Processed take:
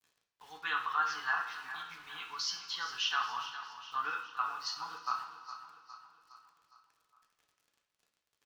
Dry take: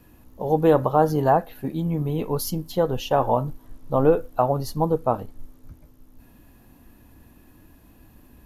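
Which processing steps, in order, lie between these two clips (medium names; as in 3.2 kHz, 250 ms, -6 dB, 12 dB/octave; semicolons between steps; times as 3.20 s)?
elliptic band-pass 1.3–5.7 kHz, stop band 40 dB; small samples zeroed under -58.5 dBFS; feedback delay 411 ms, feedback 52%, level -12.5 dB; reverberation, pre-delay 3 ms, DRR 0 dB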